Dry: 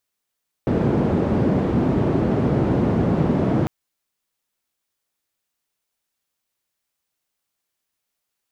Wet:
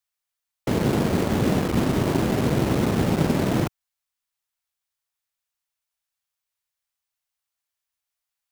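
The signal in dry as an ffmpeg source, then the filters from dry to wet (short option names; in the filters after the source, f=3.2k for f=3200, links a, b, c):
-f lavfi -i "anoisesrc=c=white:d=3:r=44100:seed=1,highpass=f=97,lowpass=f=290,volume=5.8dB"
-filter_complex "[0:a]aeval=exprs='0.398*(cos(1*acos(clip(val(0)/0.398,-1,1)))-cos(1*PI/2))+0.0447*(cos(3*acos(clip(val(0)/0.398,-1,1)))-cos(3*PI/2))+0.00794*(cos(7*acos(clip(val(0)/0.398,-1,1)))-cos(7*PI/2))':c=same,acrossover=split=130|570|1100[a][b][c][d];[b]acrusher=bits=4:mix=0:aa=0.000001[e];[a][e][c][d]amix=inputs=4:normalize=0"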